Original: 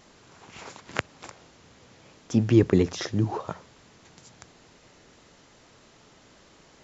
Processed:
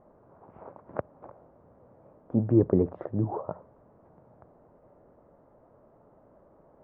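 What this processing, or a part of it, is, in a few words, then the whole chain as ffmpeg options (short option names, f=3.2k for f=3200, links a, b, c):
under water: -af "lowpass=f=1.1k:w=0.5412,lowpass=f=1.1k:w=1.3066,equalizer=f=590:t=o:w=0.53:g=8,volume=-3.5dB"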